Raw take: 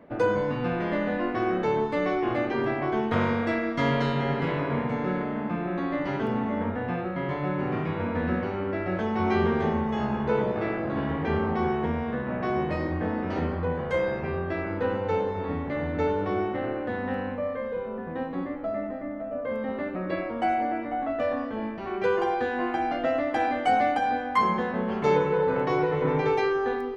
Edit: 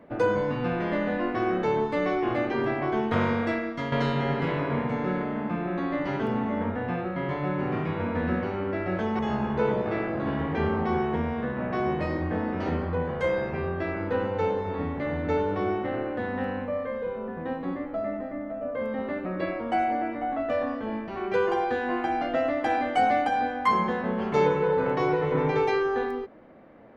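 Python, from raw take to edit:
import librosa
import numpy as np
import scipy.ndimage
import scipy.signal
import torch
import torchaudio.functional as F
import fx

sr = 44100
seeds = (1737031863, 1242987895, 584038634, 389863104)

y = fx.edit(x, sr, fx.fade_out_to(start_s=3.45, length_s=0.47, floor_db=-9.5),
    fx.cut(start_s=9.19, length_s=0.7), tone=tone)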